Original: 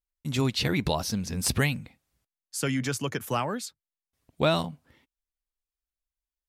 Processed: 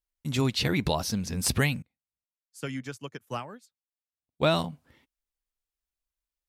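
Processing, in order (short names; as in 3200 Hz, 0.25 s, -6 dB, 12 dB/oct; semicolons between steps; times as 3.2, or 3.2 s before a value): 1.82–4.44 upward expander 2.5:1, over -40 dBFS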